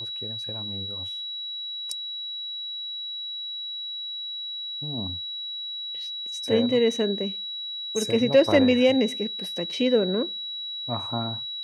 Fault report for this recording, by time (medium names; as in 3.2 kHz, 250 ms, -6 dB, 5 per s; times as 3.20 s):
whine 3.9 kHz -31 dBFS